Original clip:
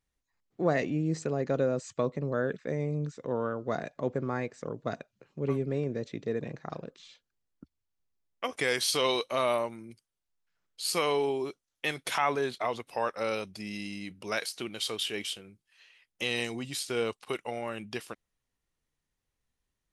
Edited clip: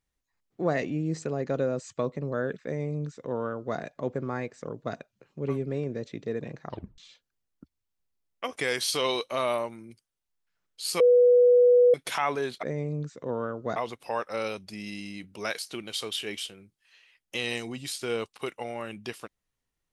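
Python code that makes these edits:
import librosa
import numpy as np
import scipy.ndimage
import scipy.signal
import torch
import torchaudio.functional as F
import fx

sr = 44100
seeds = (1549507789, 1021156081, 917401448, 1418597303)

y = fx.edit(x, sr, fx.duplicate(start_s=2.65, length_s=1.13, to_s=12.63),
    fx.tape_stop(start_s=6.67, length_s=0.31),
    fx.bleep(start_s=11.0, length_s=0.94, hz=490.0, db=-14.5), tone=tone)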